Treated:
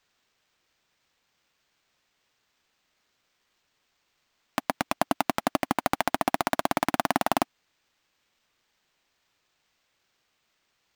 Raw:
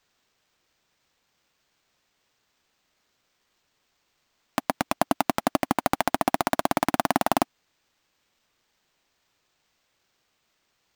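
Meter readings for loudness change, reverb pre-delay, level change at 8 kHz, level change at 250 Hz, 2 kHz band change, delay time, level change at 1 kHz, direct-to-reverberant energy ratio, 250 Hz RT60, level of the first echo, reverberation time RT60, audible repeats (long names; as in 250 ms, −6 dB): −2.0 dB, no reverb audible, −2.5 dB, −3.0 dB, −0.5 dB, no echo audible, −2.0 dB, no reverb audible, no reverb audible, no echo audible, no reverb audible, no echo audible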